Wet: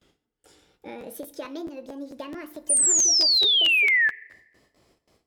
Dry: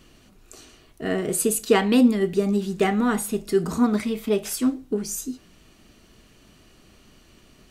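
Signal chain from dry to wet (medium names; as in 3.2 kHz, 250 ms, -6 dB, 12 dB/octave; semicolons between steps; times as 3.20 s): gliding tape speed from 114% -> 179%; high-pass 97 Hz 6 dB/octave; gate with hold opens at -43 dBFS; treble shelf 8.7 kHz -9 dB; compression 2.5:1, threshold -30 dBFS, peak gain reduction 12 dB; painted sound fall, 2.69–4.09 s, 1.7–9.5 kHz -12 dBFS; FDN reverb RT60 1.2 s, low-frequency decay 0.8×, high-frequency decay 0.55×, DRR 16 dB; crackling interface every 0.22 s, samples 512, repeat, from 1.00 s; trim -7.5 dB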